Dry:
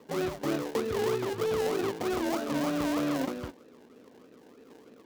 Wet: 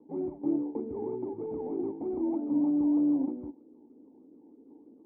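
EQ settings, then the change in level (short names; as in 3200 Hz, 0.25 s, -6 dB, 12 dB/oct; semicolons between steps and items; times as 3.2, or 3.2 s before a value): vocal tract filter u; air absorption 220 m; bell 130 Hz -3.5 dB 0.93 oct; +6.5 dB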